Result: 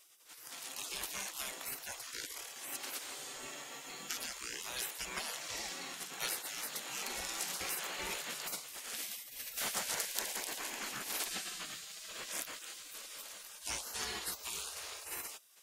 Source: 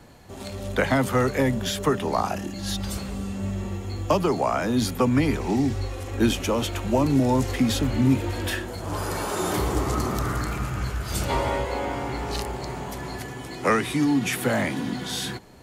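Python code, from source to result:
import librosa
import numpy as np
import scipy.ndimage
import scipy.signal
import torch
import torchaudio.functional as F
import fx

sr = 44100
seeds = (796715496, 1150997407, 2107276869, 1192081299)

y = fx.tone_stack(x, sr, knobs='5-5-5')
y = fx.spec_gate(y, sr, threshold_db=-20, keep='weak')
y = y * 10.0 ** (9.0 / 20.0)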